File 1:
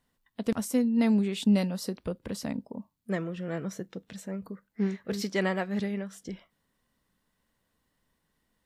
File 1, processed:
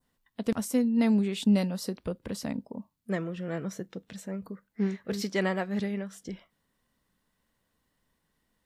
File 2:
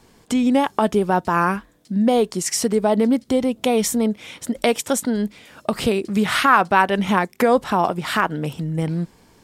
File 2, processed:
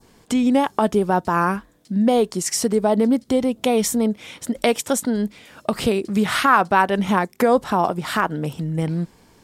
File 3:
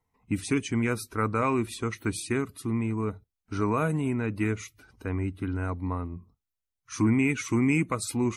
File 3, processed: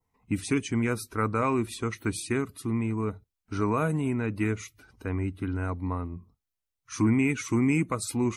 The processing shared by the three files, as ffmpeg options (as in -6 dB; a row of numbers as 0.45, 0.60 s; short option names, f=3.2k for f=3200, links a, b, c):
-af "adynamicequalizer=threshold=0.01:dfrequency=2500:dqfactor=1.1:tfrequency=2500:tqfactor=1.1:attack=5:release=100:ratio=0.375:range=2:mode=cutabove:tftype=bell"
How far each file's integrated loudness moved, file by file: 0.0, -0.5, 0.0 LU